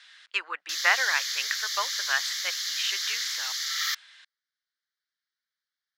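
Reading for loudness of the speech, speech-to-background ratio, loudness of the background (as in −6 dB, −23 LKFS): −29.5 LKFS, −1.0 dB, −28.5 LKFS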